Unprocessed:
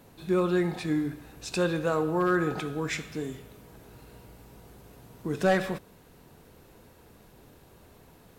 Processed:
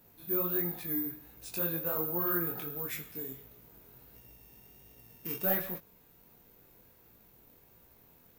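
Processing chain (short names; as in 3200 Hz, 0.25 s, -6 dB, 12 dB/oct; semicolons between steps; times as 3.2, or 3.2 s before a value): 4.15–5.43 sample sorter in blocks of 16 samples; careless resampling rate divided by 3×, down none, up zero stuff; chorus 1.4 Hz, delay 17 ms, depth 7.3 ms; gain -7.5 dB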